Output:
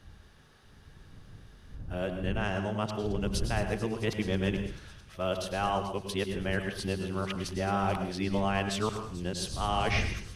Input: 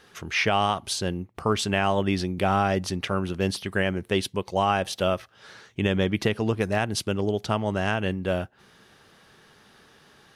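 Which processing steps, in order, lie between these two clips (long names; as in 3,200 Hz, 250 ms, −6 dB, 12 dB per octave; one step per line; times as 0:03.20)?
played backwards from end to start
wind on the microphone 100 Hz −34 dBFS
on a send: delay with a high-pass on its return 219 ms, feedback 79%, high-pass 4,600 Hz, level −12 dB
on the sum: dense smooth reverb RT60 0.52 s, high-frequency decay 0.75×, pre-delay 90 ms, DRR 6.5 dB
level −7.5 dB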